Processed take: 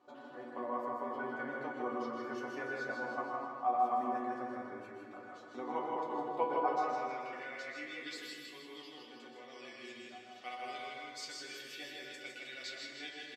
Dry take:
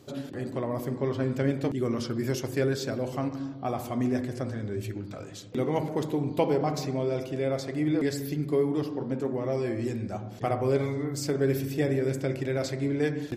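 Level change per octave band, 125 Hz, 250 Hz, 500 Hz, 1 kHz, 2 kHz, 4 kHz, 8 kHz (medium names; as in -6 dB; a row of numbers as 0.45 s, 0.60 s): -31.5 dB, -16.5 dB, -13.0 dB, +1.0 dB, -2.0 dB, -4.5 dB, -12.5 dB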